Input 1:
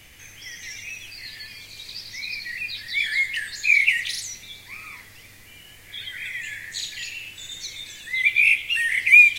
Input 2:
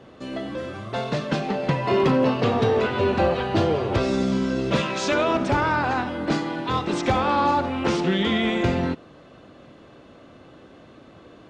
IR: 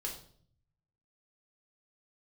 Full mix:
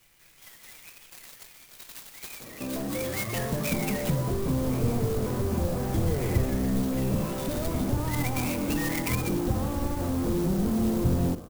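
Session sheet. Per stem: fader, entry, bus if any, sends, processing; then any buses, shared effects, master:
0:02.91 −17 dB → 0:03.35 −10 dB, 0.00 s, no send, downward compressor 5 to 1, threshold −23 dBFS, peak gain reduction 14 dB; parametric band 4,300 Hz +9 dB 1 octave; comb filter 6 ms, depth 84%
+1.5 dB, 2.40 s, send −10 dB, low-pass filter 1,300 Hz 24 dB per octave; mains-hum notches 50/100/150 Hz; slew-rate limiting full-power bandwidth 14 Hz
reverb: on, RT60 0.55 s, pre-delay 4 ms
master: parametric band 540 Hz −3 dB 2.3 octaves; treble cut that deepens with the level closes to 1,700 Hz, closed at −22 dBFS; converter with an unsteady clock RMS 0.071 ms

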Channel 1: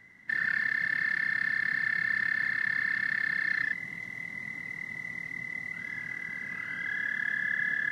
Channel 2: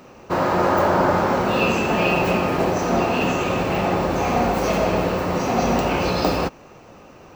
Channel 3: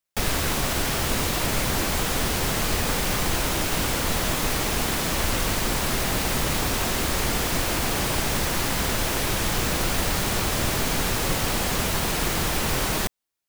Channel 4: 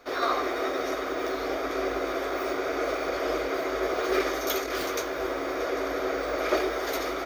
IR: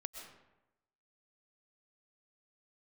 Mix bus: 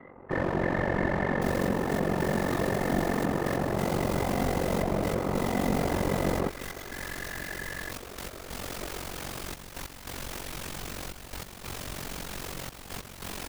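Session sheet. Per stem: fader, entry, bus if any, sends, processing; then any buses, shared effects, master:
−2.0 dB, 0.00 s, bus A, no send, Butterworth low-pass 3,100 Hz; spectral tilt +3 dB per octave
−2.0 dB, 0.00 s, no bus, no send, low-pass filter 1,400 Hz 24 dB per octave; slew-rate limiting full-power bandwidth 40 Hz
−6.0 dB, 1.25 s, bus A, no send, no processing
−14.5 dB, 2.30 s, no bus, no send, no processing
bus A: 0.0 dB, gate pattern "x..x..xxxxxxxxx" 143 BPM −12 dB; brickwall limiter −25.5 dBFS, peak gain reduction 11 dB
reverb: not used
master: ring modulation 23 Hz

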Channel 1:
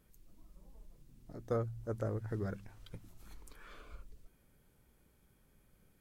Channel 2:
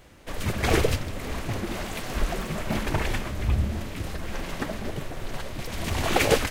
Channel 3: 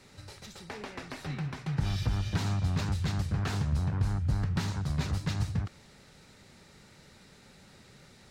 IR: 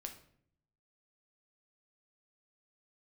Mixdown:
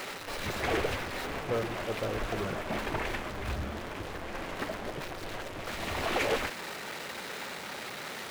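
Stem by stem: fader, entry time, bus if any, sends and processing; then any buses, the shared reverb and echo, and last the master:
−4.5 dB, 0.00 s, no send, no processing
−13.5 dB, 0.00 s, no send, no processing
−5.5 dB, 0.00 s, no send, sign of each sample alone; low-shelf EQ 200 Hz −11.5 dB; brickwall limiter −36 dBFS, peak gain reduction 8 dB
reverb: not used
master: bass and treble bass −10 dB, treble −11 dB; leveller curve on the samples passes 3

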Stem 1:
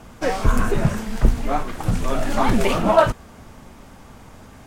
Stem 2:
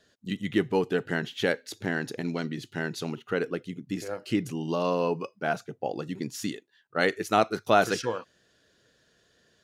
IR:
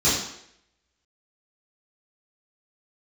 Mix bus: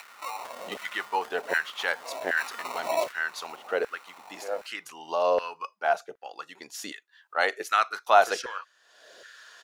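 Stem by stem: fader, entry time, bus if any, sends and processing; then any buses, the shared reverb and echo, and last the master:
−19.5 dB, 0.00 s, no send, echo send −20 dB, decimation without filtering 27×; envelope flattener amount 50%
−0.5 dB, 0.40 s, no send, no echo send, parametric band 84 Hz +5 dB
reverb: not used
echo: single-tap delay 521 ms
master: upward compression, threshold −37 dBFS; auto-filter high-pass saw down 1.3 Hz 540–1,600 Hz

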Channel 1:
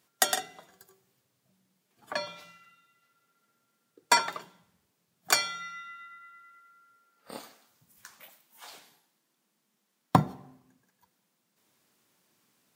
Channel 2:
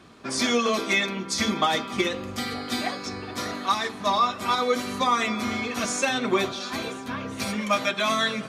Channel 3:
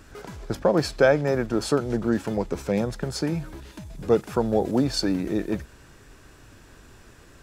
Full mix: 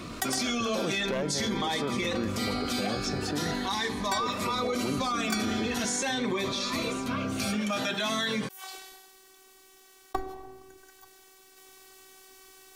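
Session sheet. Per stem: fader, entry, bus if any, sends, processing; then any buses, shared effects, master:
−7.5 dB, 0.00 s, no bus, no send, phases set to zero 379 Hz
−1.5 dB, 0.00 s, bus A, no send, phaser whose notches keep moving one way rising 0.44 Hz
−11.0 dB, 0.10 s, bus A, no send, wavefolder on the positive side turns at −12.5 dBFS
bus A: 0.0 dB, brickwall limiter −23 dBFS, peak gain reduction 10 dB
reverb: not used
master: envelope flattener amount 50%

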